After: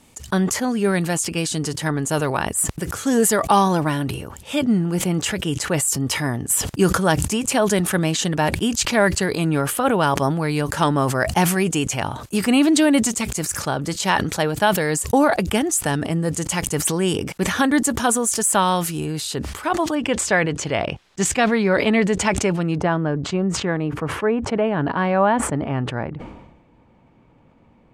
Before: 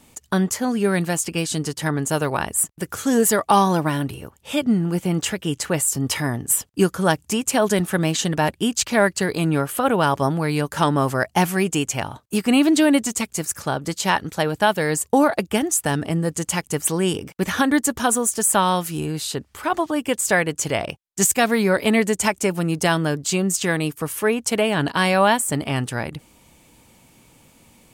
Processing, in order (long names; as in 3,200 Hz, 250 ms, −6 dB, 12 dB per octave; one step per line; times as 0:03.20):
low-pass filter 12,000 Hz 12 dB per octave, from 0:19.95 4,000 Hz, from 0:22.78 1,400 Hz
level that may fall only so fast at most 53 dB per second